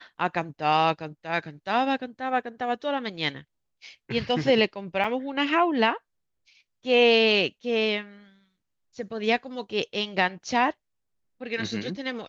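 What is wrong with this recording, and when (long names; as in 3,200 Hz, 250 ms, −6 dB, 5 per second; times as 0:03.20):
0:05.04: drop-out 3.3 ms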